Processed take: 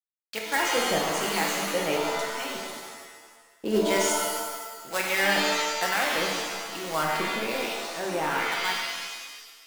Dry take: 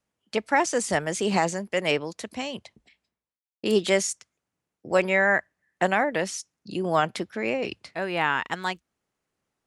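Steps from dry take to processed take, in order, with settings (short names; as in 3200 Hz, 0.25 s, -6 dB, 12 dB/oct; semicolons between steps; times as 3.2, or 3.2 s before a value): low shelf 130 Hz -9.5 dB; companded quantiser 4-bit; harmonic tremolo 1.1 Hz, depth 70%, crossover 1000 Hz; shimmer reverb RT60 1.4 s, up +7 st, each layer -2 dB, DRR -1 dB; gain -2.5 dB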